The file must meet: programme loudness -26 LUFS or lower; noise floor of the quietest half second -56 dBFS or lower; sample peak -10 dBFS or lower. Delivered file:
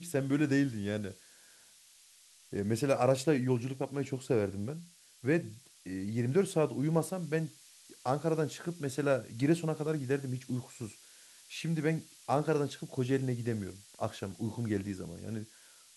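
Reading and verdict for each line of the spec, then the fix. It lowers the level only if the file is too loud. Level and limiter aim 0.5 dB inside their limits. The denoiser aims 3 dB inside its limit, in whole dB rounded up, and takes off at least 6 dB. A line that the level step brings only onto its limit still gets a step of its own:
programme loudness -33.5 LUFS: pass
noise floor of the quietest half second -60 dBFS: pass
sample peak -14.0 dBFS: pass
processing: none needed

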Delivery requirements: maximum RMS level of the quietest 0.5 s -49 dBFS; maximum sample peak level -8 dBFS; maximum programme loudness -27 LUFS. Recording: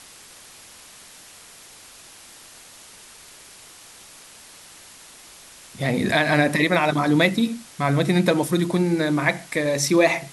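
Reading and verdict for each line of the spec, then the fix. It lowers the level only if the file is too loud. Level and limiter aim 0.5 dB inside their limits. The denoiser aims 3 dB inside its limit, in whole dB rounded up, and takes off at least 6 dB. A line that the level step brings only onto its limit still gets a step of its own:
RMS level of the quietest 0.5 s -46 dBFS: fail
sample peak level -4.5 dBFS: fail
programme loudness -20.5 LUFS: fail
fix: trim -7 dB

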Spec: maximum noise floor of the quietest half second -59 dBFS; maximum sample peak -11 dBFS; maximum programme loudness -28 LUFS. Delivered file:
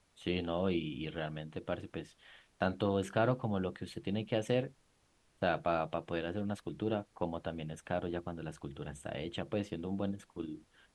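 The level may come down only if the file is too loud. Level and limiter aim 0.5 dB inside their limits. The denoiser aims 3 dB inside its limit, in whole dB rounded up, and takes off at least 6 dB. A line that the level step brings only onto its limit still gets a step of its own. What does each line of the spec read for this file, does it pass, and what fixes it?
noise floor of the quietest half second -71 dBFS: pass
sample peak -16.0 dBFS: pass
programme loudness -37.0 LUFS: pass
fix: none needed

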